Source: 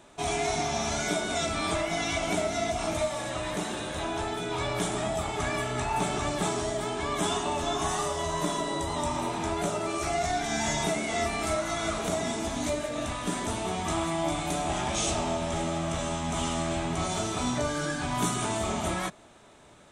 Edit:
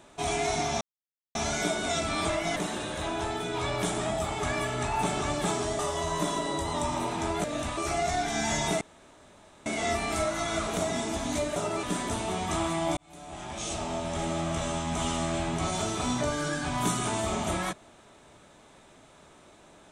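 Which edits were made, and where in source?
0:00.81: splice in silence 0.54 s
0:02.02–0:03.53: remove
0:06.76–0:08.01: remove
0:09.66–0:09.93: swap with 0:12.87–0:13.20
0:10.97: splice in room tone 0.85 s
0:14.34–0:15.75: fade in

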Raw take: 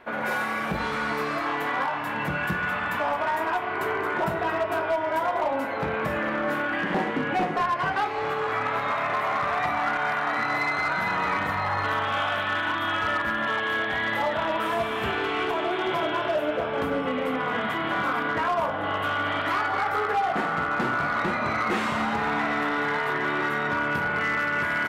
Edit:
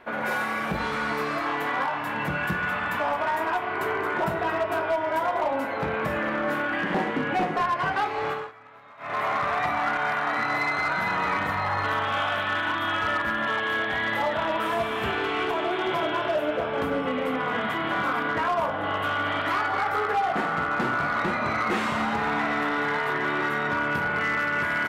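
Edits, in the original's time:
0:08.29–0:09.21: duck −22.5 dB, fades 0.23 s

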